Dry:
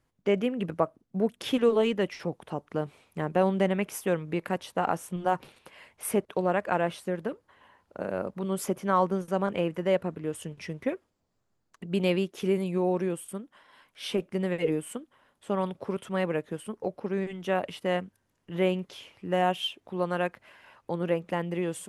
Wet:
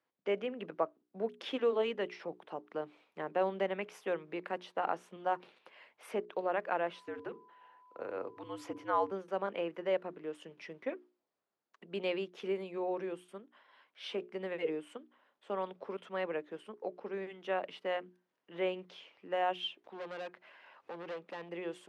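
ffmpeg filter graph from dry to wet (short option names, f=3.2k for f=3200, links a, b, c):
-filter_complex "[0:a]asettb=1/sr,asplit=3[a][b][c];[a]atrim=end=6.934[d];[b]atrim=start=6.93:end=9.11,asetpts=PTS-STARTPTS,afade=t=in:d=0.004:c=qsin,afade=t=out:st=2.176:d=0.004:c=qsin,bandreject=f=60:t=h:w=6,bandreject=f=120:t=h:w=6,bandreject=f=180:t=h:w=6,bandreject=f=240:t=h:w=6,bandreject=f=300:t=h:w=6,bandreject=f=360:t=h:w=6,bandreject=f=420:t=h:w=6,bandreject=f=480:t=h:w=6,bandreject=f=540:t=h:w=6,afreqshift=-80,aeval=exprs='val(0)+0.00224*sin(2*PI*1000*n/s)':c=same[e];[c]atrim=start=9.106[f];[d][e]acrossfade=d=0.004:c1=hsin:c2=qsin[g];[g][f]acrossfade=d=0.004:c1=qsin:c2=hsin,asettb=1/sr,asplit=3[h][i][j];[h]atrim=end=19.844[k];[i]atrim=start=19.84:end=21.49,asetpts=PTS-STARTPTS,afade=t=in:d=0.004:c=qsin,afade=t=out:st=1.646:d=0.004:c=qsin,acompressor=mode=upward:threshold=-45dB:ratio=2.5:attack=3.2:release=140:knee=2.83:detection=peak,volume=31.5dB,asoftclip=hard,volume=-31.5dB[l];[j]atrim=start=21.486[m];[k][l]acrossfade=d=0.004:c1=hsin:c2=qsin[n];[n][m]acrossfade=d=0.004:c1=qsin:c2=hsin,highpass=140,acrossover=split=280 5000:gain=0.158 1 0.0794[o][p][q];[o][p][q]amix=inputs=3:normalize=0,bandreject=f=60:t=h:w=6,bandreject=f=120:t=h:w=6,bandreject=f=180:t=h:w=6,bandreject=f=240:t=h:w=6,bandreject=f=300:t=h:w=6,bandreject=f=360:t=h:w=6,bandreject=f=420:t=h:w=6,volume=-6dB"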